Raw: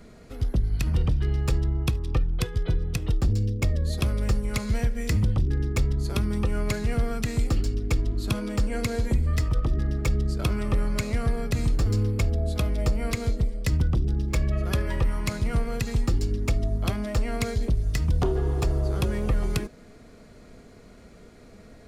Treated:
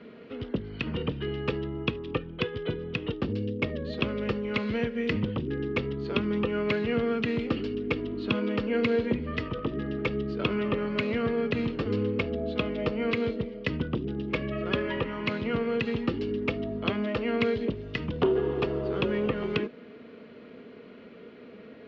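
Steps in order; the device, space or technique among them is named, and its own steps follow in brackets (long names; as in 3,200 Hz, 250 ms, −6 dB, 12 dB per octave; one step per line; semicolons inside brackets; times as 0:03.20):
low-pass filter 6,900 Hz 24 dB per octave
kitchen radio (loudspeaker in its box 210–3,400 Hz, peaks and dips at 240 Hz +5 dB, 450 Hz +6 dB, 740 Hz −6 dB, 2,900 Hz +7 dB)
level +2 dB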